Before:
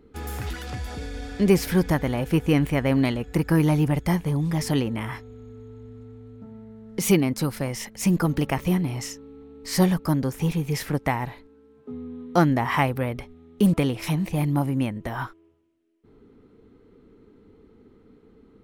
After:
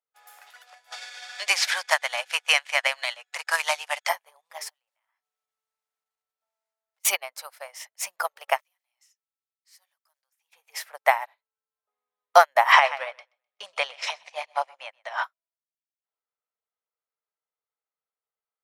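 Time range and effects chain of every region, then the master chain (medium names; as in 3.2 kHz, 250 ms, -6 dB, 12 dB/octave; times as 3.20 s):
0.92–4.09 s: median filter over 5 samples + frequency weighting ITU-R 468 + three bands compressed up and down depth 40%
4.69–7.05 s: block-companded coder 5-bit + high-pass 570 Hz + compression 5:1, threshold -48 dBFS
8.60–10.53 s: short-mantissa float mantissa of 4-bit + amplifier tone stack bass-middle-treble 5-5-5 + compression 2:1, threshold -40 dBFS
12.72–15.24 s: low-pass 6.3 kHz 24 dB/octave + treble shelf 2.4 kHz +7.5 dB + feedback delay 127 ms, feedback 38%, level -11.5 dB
whole clip: elliptic high-pass 610 Hz, stop band 50 dB; loudness maximiser +14 dB; upward expansion 2.5:1, over -37 dBFS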